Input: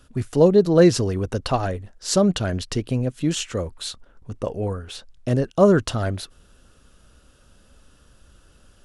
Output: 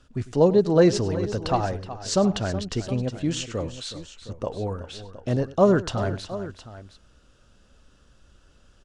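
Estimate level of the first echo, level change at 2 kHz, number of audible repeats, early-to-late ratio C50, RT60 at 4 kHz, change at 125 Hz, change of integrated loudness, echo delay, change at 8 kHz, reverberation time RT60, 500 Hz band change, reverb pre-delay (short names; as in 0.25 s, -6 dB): -18.0 dB, -3.0 dB, 3, none, none, -3.0 dB, -3.0 dB, 0.1 s, -4.5 dB, none, -2.5 dB, none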